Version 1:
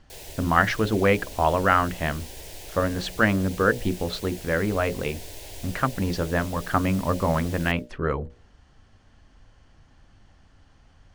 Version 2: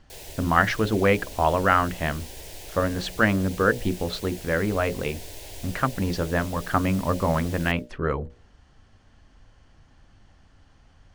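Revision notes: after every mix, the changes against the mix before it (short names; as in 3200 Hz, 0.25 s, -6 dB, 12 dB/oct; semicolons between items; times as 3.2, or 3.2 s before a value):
none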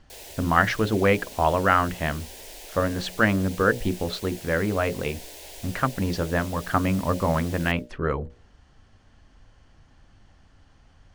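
background: add HPF 360 Hz 12 dB/oct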